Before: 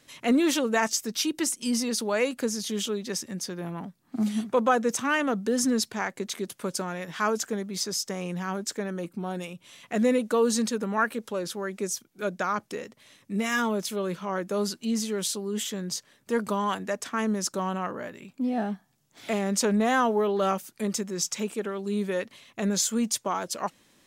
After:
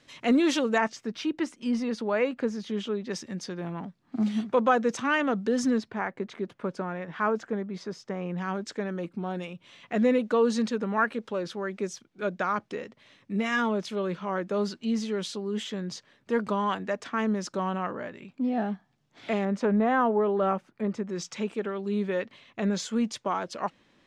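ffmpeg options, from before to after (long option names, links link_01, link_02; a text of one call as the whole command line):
ffmpeg -i in.wav -af "asetnsamples=nb_out_samples=441:pad=0,asendcmd='0.78 lowpass f 2300;3.11 lowpass f 4300;5.78 lowpass f 1900;8.38 lowpass f 3700;19.45 lowpass f 1700;21.09 lowpass f 3400',lowpass=5400" out.wav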